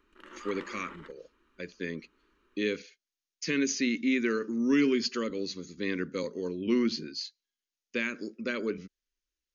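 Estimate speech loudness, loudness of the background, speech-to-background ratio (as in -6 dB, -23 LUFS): -31.5 LUFS, -46.5 LUFS, 15.0 dB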